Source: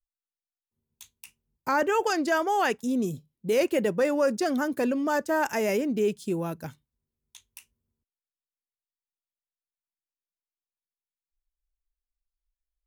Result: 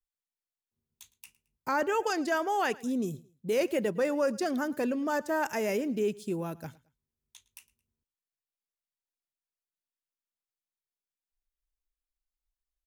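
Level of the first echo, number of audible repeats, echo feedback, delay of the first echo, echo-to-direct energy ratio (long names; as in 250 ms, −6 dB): −22.0 dB, 2, 32%, 110 ms, −21.5 dB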